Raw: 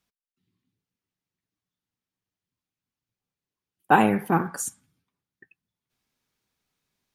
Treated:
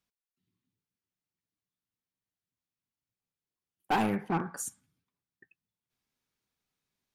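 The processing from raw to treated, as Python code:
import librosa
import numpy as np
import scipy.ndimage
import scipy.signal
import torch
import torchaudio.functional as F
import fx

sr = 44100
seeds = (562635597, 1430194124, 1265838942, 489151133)

y = np.clip(x, -10.0 ** (-16.0 / 20.0), 10.0 ** (-16.0 / 20.0))
y = fx.air_absorb(y, sr, metres=97.0, at=(4.16, 4.57))
y = y * 10.0 ** (-6.5 / 20.0)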